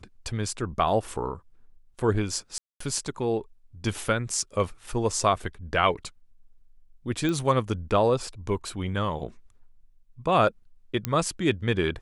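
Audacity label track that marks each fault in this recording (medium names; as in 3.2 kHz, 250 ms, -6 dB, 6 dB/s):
2.580000	2.800000	dropout 224 ms
7.290000	7.290000	pop -16 dBFS
11.050000	11.050000	pop -10 dBFS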